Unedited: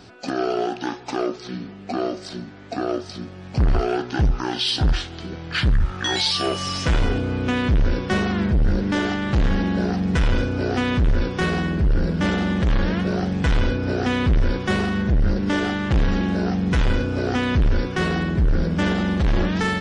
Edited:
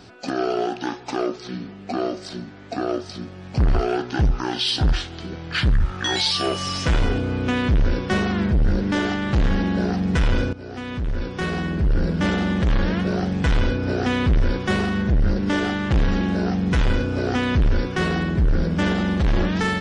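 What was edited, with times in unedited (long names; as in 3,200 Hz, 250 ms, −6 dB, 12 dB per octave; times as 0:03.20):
0:10.53–0:12.03: fade in, from −16 dB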